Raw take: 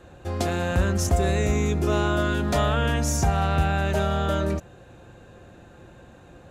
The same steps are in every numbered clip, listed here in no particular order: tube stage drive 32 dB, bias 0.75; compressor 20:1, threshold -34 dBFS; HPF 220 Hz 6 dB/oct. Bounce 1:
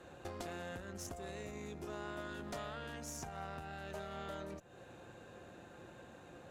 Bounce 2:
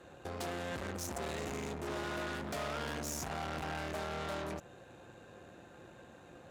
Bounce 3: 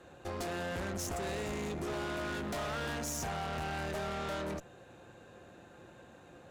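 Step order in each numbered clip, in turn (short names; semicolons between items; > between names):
compressor > HPF > tube stage; tube stage > compressor > HPF; HPF > tube stage > compressor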